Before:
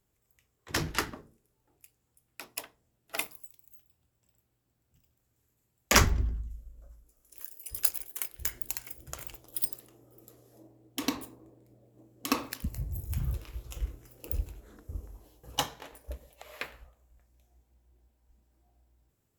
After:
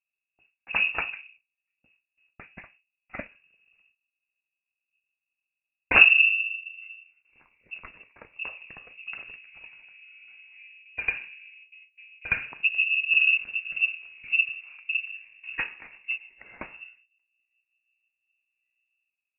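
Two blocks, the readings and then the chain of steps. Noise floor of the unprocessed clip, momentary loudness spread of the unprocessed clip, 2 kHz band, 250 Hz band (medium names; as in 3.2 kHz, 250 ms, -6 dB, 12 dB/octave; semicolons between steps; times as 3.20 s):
-77 dBFS, 20 LU, +15.0 dB, -10.0 dB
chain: gate with hold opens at -51 dBFS; peaking EQ 110 Hz +14 dB 2.1 oct; frequency inversion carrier 2.7 kHz; trim -1 dB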